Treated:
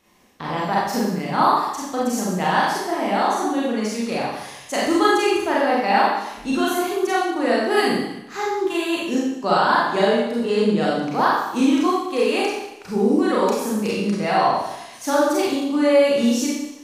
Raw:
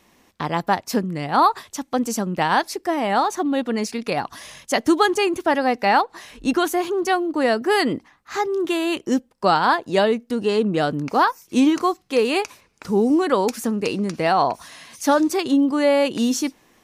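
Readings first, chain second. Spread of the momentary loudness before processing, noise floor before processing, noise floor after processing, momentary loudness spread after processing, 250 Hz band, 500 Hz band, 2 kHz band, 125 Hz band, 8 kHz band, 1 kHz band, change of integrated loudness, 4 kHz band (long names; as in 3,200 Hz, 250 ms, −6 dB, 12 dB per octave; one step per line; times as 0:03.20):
8 LU, −60 dBFS, −40 dBFS, 8 LU, 0.0 dB, +1.0 dB, +1.0 dB, 0.0 dB, +0.5 dB, +0.5 dB, +0.5 dB, +0.5 dB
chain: four-comb reverb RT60 0.9 s, combs from 30 ms, DRR −6 dB
level −6.5 dB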